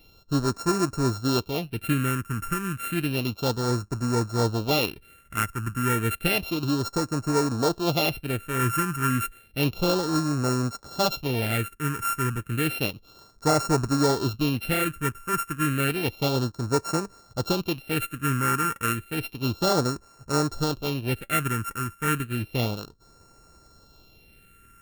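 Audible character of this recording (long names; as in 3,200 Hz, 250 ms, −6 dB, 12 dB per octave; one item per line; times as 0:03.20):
a buzz of ramps at a fixed pitch in blocks of 32 samples
phaser sweep stages 4, 0.31 Hz, lowest notch 650–3,100 Hz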